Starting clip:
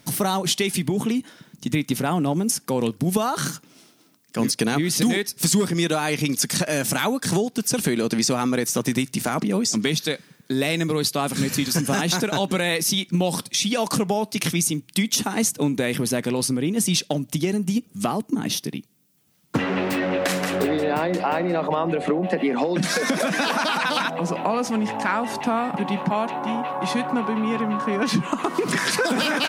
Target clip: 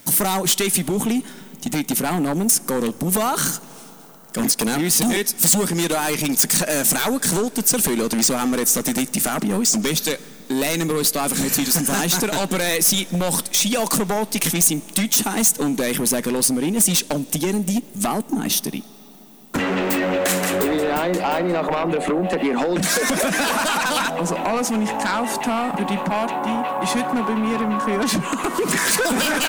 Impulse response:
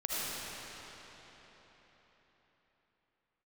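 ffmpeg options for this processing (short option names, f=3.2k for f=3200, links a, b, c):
-filter_complex "[0:a]aeval=exprs='0.398*sin(PI/2*2.51*val(0)/0.398)':c=same,equalizer=f=120:w=2.8:g=-10.5,aexciter=amount=2.7:drive=4.4:freq=6.9k,asplit=2[a][b];[1:a]atrim=start_sample=2205,asetrate=31311,aresample=44100[c];[b][c]afir=irnorm=-1:irlink=0,volume=-29.5dB[d];[a][d]amix=inputs=2:normalize=0,volume=-7.5dB"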